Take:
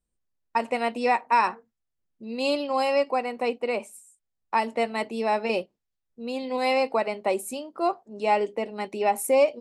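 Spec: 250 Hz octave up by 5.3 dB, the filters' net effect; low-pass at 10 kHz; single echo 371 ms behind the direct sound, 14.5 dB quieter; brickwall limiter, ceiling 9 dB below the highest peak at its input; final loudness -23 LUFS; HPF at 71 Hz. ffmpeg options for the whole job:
-af "highpass=71,lowpass=10000,equalizer=f=250:t=o:g=6,alimiter=limit=0.119:level=0:latency=1,aecho=1:1:371:0.188,volume=2"

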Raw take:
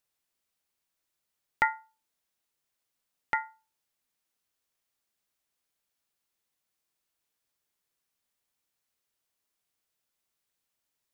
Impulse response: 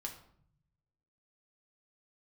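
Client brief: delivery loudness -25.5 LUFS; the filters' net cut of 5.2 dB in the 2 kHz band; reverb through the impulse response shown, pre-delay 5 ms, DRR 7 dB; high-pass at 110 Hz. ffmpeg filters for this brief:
-filter_complex "[0:a]highpass=110,equalizer=f=2000:t=o:g=-6,asplit=2[s0][s1];[1:a]atrim=start_sample=2205,adelay=5[s2];[s1][s2]afir=irnorm=-1:irlink=0,volume=0.562[s3];[s0][s3]amix=inputs=2:normalize=0,volume=3.35"

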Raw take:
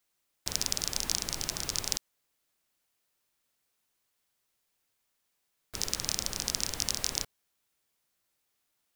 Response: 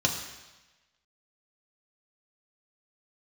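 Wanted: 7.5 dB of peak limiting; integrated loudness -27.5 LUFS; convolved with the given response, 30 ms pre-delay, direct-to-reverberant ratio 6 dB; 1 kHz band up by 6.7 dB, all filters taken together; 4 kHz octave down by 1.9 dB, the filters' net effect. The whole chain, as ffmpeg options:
-filter_complex "[0:a]equalizer=f=1000:t=o:g=8.5,equalizer=f=4000:t=o:g=-3,alimiter=limit=0.211:level=0:latency=1,asplit=2[s0][s1];[1:a]atrim=start_sample=2205,adelay=30[s2];[s1][s2]afir=irnorm=-1:irlink=0,volume=0.158[s3];[s0][s3]amix=inputs=2:normalize=0,volume=2.37"

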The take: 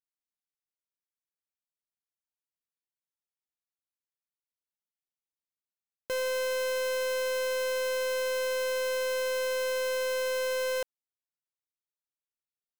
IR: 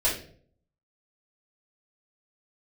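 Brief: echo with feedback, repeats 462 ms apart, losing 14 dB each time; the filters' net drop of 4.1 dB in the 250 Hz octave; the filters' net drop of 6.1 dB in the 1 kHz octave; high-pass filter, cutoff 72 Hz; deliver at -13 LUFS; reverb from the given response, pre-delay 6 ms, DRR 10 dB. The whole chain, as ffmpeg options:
-filter_complex "[0:a]highpass=72,equalizer=f=250:t=o:g=-4.5,equalizer=f=1000:t=o:g=-6,aecho=1:1:462|924:0.2|0.0399,asplit=2[s0][s1];[1:a]atrim=start_sample=2205,adelay=6[s2];[s1][s2]afir=irnorm=-1:irlink=0,volume=0.0891[s3];[s0][s3]amix=inputs=2:normalize=0,volume=7.08"

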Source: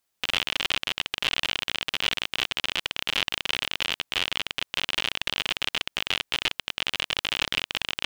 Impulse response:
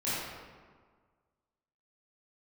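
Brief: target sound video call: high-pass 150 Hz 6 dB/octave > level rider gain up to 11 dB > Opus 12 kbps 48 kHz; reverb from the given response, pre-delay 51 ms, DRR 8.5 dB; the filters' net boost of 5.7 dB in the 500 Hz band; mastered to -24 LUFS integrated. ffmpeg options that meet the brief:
-filter_complex "[0:a]equalizer=f=500:t=o:g=7.5,asplit=2[s0][s1];[1:a]atrim=start_sample=2205,adelay=51[s2];[s1][s2]afir=irnorm=-1:irlink=0,volume=0.15[s3];[s0][s3]amix=inputs=2:normalize=0,highpass=f=150:p=1,dynaudnorm=m=3.55,volume=1.41" -ar 48000 -c:a libopus -b:a 12k

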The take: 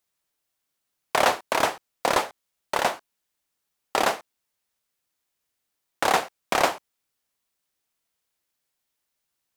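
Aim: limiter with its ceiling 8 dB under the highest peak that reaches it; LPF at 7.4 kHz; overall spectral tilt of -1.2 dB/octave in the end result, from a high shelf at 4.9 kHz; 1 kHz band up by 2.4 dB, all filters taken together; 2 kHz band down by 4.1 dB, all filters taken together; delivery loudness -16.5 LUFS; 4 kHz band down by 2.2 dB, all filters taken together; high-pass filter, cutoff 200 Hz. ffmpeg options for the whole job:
-af "highpass=200,lowpass=7400,equalizer=f=1000:t=o:g=4.5,equalizer=f=2000:t=o:g=-7.5,equalizer=f=4000:t=o:g=-4,highshelf=f=4900:g=8,volume=4.47,alimiter=limit=0.944:level=0:latency=1"

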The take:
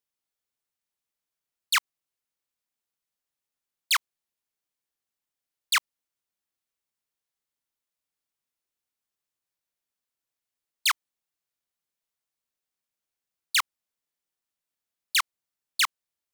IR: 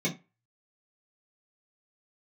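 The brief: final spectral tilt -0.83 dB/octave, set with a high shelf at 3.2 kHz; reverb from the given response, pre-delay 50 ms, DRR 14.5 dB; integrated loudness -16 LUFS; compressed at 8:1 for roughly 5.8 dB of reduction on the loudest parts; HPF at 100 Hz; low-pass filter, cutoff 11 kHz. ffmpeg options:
-filter_complex "[0:a]highpass=100,lowpass=11000,highshelf=f=3200:g=-7.5,acompressor=threshold=0.0398:ratio=8,asplit=2[s0][s1];[1:a]atrim=start_sample=2205,adelay=50[s2];[s1][s2]afir=irnorm=-1:irlink=0,volume=0.075[s3];[s0][s3]amix=inputs=2:normalize=0,volume=8.41"

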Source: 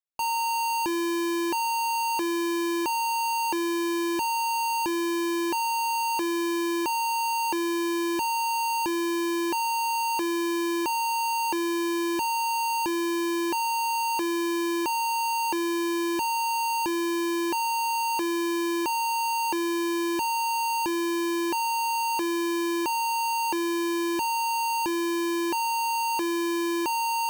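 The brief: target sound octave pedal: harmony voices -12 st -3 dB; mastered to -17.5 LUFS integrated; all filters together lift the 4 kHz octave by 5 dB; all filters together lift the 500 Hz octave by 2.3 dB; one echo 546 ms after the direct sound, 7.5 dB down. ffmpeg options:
-filter_complex "[0:a]equalizer=f=500:t=o:g=5,equalizer=f=4000:t=o:g=6.5,aecho=1:1:546:0.422,asplit=2[s0][s1];[s1]asetrate=22050,aresample=44100,atempo=2,volume=0.708[s2];[s0][s2]amix=inputs=2:normalize=0,volume=1.68"

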